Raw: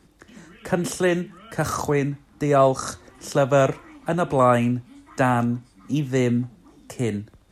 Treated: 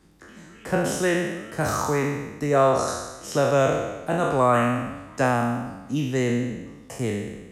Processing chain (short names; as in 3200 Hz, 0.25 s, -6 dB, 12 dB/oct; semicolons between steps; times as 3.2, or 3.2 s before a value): spectral trails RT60 1.15 s; gain -3.5 dB